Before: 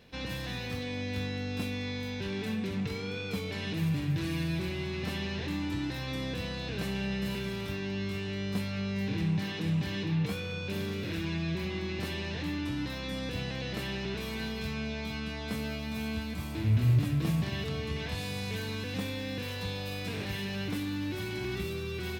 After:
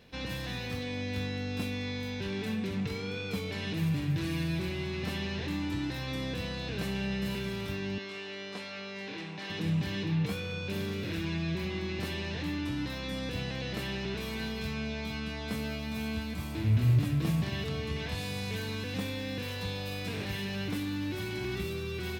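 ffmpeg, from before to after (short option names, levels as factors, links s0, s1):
-filter_complex "[0:a]asettb=1/sr,asplit=3[s0][s1][s2];[s0]atrim=end=7.984[s3];[s1]atrim=start=7.98:end=9.5,asetpts=PTS-STARTPTS,afade=t=in:d=0.004:c=qsin,afade=t=out:st=1.516:d=0.004:c=qsin,highpass=410,lowpass=6600[s4];[s2]atrim=start=9.496[s5];[s3][s4]acrossfade=d=0.004:c1=hsin:c2=qsin[s6];[s6][s5]acrossfade=d=0.004:c1=qsin:c2=hsin"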